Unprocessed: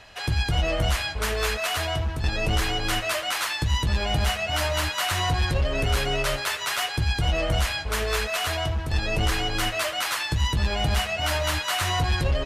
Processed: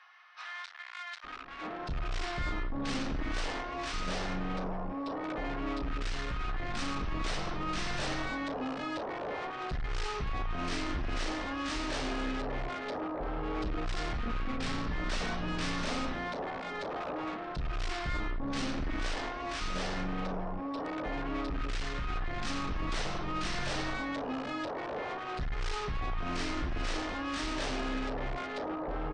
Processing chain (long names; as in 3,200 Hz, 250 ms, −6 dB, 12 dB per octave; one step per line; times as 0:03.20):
soft clipping −28.5 dBFS, distortion −8 dB
multiband delay without the direct sound highs, lows 530 ms, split 2,600 Hz
wrong playback speed 78 rpm record played at 33 rpm
level −2 dB